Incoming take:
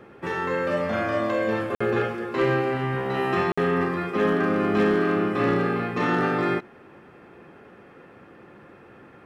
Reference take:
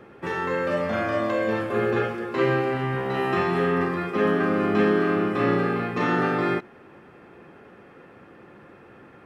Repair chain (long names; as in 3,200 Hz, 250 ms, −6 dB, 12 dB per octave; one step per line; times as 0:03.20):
clipped peaks rebuilt −14.5 dBFS
repair the gap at 0:01.75/0:03.52, 55 ms